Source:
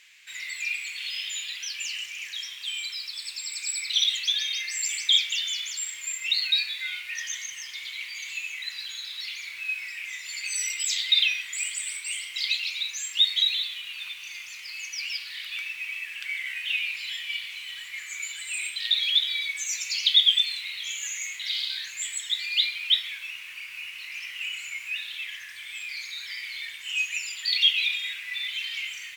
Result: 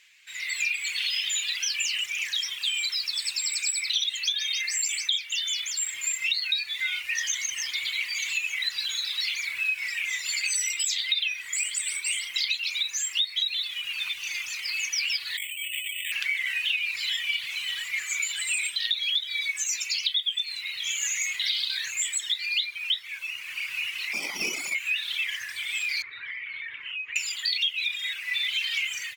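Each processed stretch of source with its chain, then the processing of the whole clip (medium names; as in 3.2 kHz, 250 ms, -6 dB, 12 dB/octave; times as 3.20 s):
15.37–16.12 s: steep high-pass 1.9 kHz 72 dB/octave + compressor with a negative ratio -38 dBFS + careless resampling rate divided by 8×, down filtered, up hold
24.13–24.75 s: comb filter that takes the minimum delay 0.89 ms + high-pass 210 Hz 24 dB/octave
26.02–27.16 s: low-pass 2.3 kHz 24 dB/octave + band-stop 790 Hz, Q 5.2 + compression, threshold -39 dBFS
whole clip: level rider gain up to 12 dB; reverb removal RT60 0.85 s; compression 6:1, threshold -21 dBFS; trim -3 dB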